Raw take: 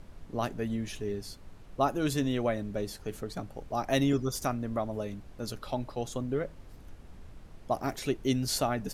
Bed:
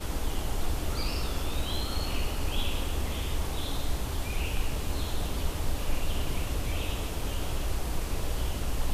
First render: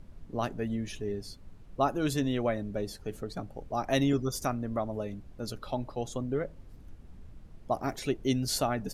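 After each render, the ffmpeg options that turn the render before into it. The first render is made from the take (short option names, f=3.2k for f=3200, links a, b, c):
-af "afftdn=nr=7:nf=-50"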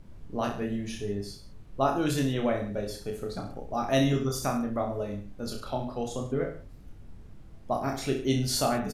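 -filter_complex "[0:a]asplit=2[a][b];[b]adelay=21,volume=-11dB[c];[a][c]amix=inputs=2:normalize=0,aecho=1:1:30|63|99.3|139.2|183.2:0.631|0.398|0.251|0.158|0.1"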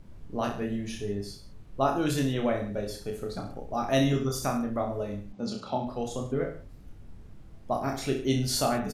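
-filter_complex "[0:a]asplit=3[a][b][c];[a]afade=t=out:st=5.32:d=0.02[d];[b]highpass=120,equalizer=f=200:t=q:w=4:g=10,equalizer=f=830:t=q:w=4:g=5,equalizer=f=1.6k:t=q:w=4:g=-7,lowpass=f=7.2k:w=0.5412,lowpass=f=7.2k:w=1.3066,afade=t=in:st=5.32:d=0.02,afade=t=out:st=5.85:d=0.02[e];[c]afade=t=in:st=5.85:d=0.02[f];[d][e][f]amix=inputs=3:normalize=0"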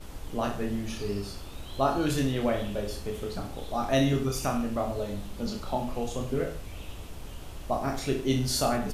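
-filter_complex "[1:a]volume=-10.5dB[a];[0:a][a]amix=inputs=2:normalize=0"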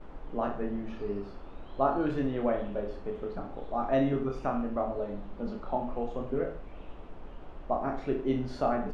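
-af "lowpass=1.4k,equalizer=f=87:w=1:g=-14"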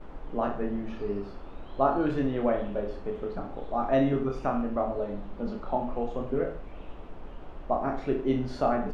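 -af "volume=2.5dB"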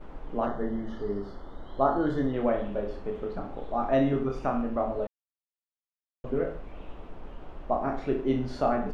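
-filter_complex "[0:a]asplit=3[a][b][c];[a]afade=t=out:st=0.45:d=0.02[d];[b]asuperstop=centerf=2500:order=20:qfactor=3.3,afade=t=in:st=0.45:d=0.02,afade=t=out:st=2.32:d=0.02[e];[c]afade=t=in:st=2.32:d=0.02[f];[d][e][f]amix=inputs=3:normalize=0,asplit=3[g][h][i];[g]atrim=end=5.07,asetpts=PTS-STARTPTS,afade=t=out:st=5.066:d=0.004:c=hsin[j];[h]atrim=start=5.07:end=6.24,asetpts=PTS-STARTPTS,volume=0[k];[i]atrim=start=6.24,asetpts=PTS-STARTPTS,afade=t=in:d=0.004:c=hsin[l];[j][k][l]concat=n=3:v=0:a=1"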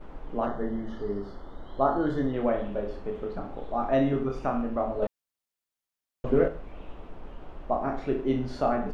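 -filter_complex "[0:a]asettb=1/sr,asplit=3[a][b][c];[a]atrim=end=5.024[d];[b]atrim=start=5.02:end=6.48,asetpts=PTS-STARTPTS,afade=t=in:d=0.004:c=qsin,afade=t=out:st=1.456:d=0.004:c=qsin,acontrast=59[e];[c]atrim=start=6.476[f];[d][e]acrossfade=d=0.004:c1=hsin:c2=qsin[g];[g][f]acrossfade=d=0.004:c1=qsin:c2=hsin"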